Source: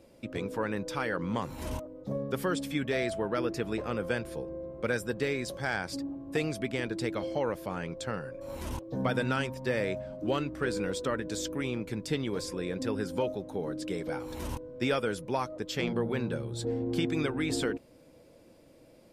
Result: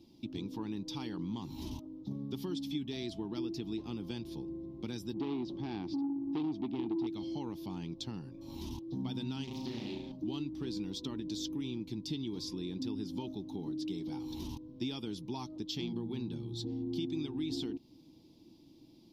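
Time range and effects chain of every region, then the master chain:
5.14–7.07 LPF 2900 Hz + bell 330 Hz +10.5 dB 1.3 oct + core saturation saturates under 1100 Hz
9.44–10.12 compressor 3:1, threshold -32 dBFS + flutter echo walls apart 5.9 m, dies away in 0.73 s + Doppler distortion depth 0.37 ms
whole clip: EQ curve 230 Hz 0 dB, 330 Hz +3 dB, 540 Hz -25 dB, 860 Hz -6 dB, 1500 Hz -24 dB, 2100 Hz -16 dB, 3500 Hz +2 dB, 5800 Hz -1 dB, 8200 Hz -17 dB, 15000 Hz -4 dB; compressor 2.5:1, threshold -37 dBFS; low shelf 80 Hz -10 dB; gain +1.5 dB

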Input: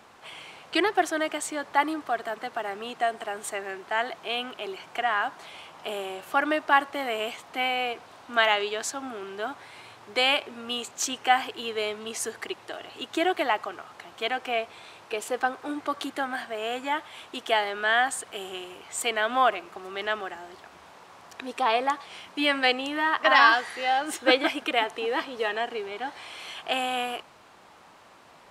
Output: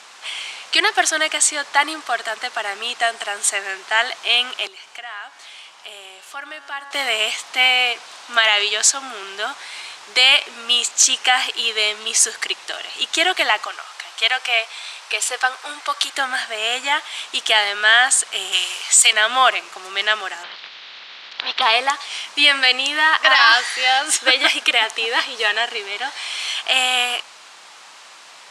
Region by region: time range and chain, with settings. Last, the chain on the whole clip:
4.67–6.91 resonator 140 Hz, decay 1.7 s + compressor 1.5:1, threshold -52 dBFS
13.66–16.14 HPF 540 Hz + notch 6700 Hz, Q 22
18.52–19.13 HPF 460 Hz + high shelf 2000 Hz +9 dB
20.42–21.61 spectral limiter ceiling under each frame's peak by 19 dB + elliptic band-pass 140–3900 Hz
whole clip: weighting filter ITU-R 468; maximiser +8 dB; gain -1 dB

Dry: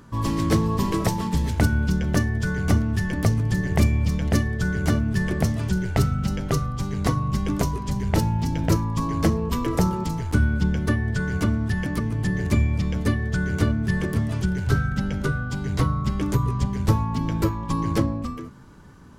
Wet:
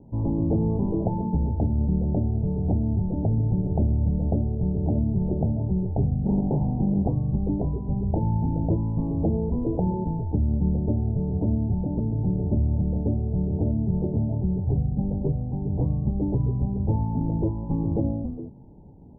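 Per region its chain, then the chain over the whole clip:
6.26–7.03 small resonant body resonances 220/720/1300 Hz, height 13 dB + Doppler distortion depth 0.86 ms
whole clip: steep low-pass 880 Hz 96 dB/oct; limiter -14.5 dBFS

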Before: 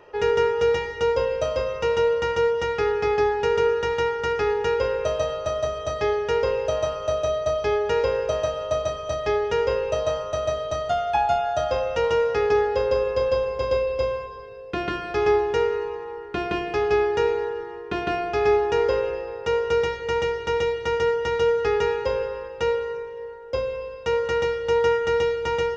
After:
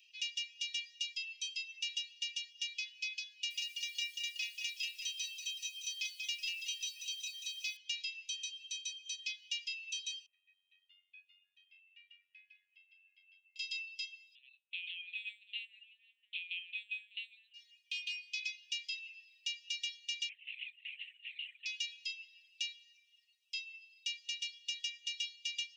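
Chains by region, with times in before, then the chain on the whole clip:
3.32–7.77 brick-wall FIR high-pass 880 Hz + lo-fi delay 0.187 s, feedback 55%, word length 9-bit, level -4 dB
10.26–13.56 LPF 1600 Hz 24 dB/oct + AM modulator 93 Hz, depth 30%
14.35–17.54 HPF 140 Hz + low shelf 440 Hz +11 dB + LPC vocoder at 8 kHz pitch kept
20.29–21.66 LPF 2600 Hz 24 dB/oct + LPC vocoder at 8 kHz whisper
whole clip: steep high-pass 2500 Hz 72 dB/oct; reverb removal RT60 0.94 s; gain +1 dB

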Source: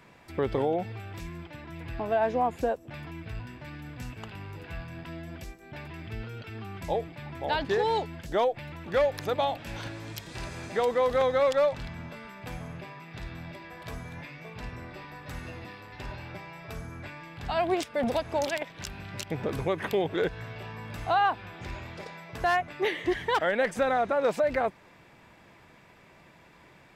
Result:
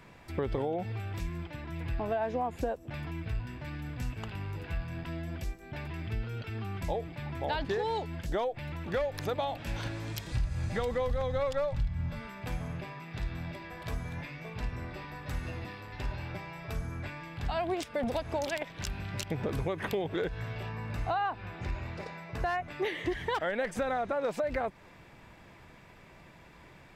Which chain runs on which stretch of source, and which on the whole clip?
10.32–12.21 resonant low shelf 190 Hz +12 dB, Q 1.5 + comb 3.6 ms, depth 39%
20.69–22.62 high shelf 5300 Hz -6.5 dB + notch 3300 Hz
whole clip: low shelf 78 Hz +11.5 dB; compressor 4:1, threshold -29 dBFS

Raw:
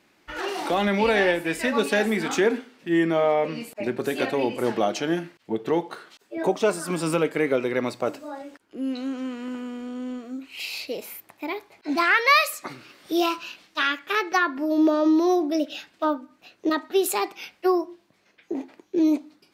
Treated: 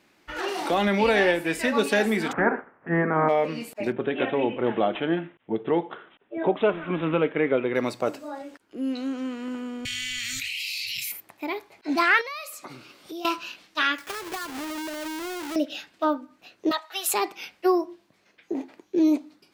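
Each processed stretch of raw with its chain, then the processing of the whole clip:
2.31–3.28 spectral limiter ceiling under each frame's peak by 20 dB + steep low-pass 1700 Hz
3.92–7.75 air absorption 92 m + careless resampling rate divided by 6×, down none, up filtered + mismatched tape noise reduction decoder only
9.85–11.12 Chebyshev band-stop 130–2000 Hz, order 4 + low shelf 480 Hz -5 dB + fast leveller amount 100%
12.21–13.25 bell 1800 Hz -8 dB 0.3 oct + compressor 4:1, threshold -36 dBFS
13.98–15.56 half-waves squared off + low shelf 360 Hz -7 dB + compressor 16:1, threshold -29 dBFS
16.71–17.14 HPF 730 Hz 24 dB/oct + comb 6.1 ms, depth 85%
whole clip: dry

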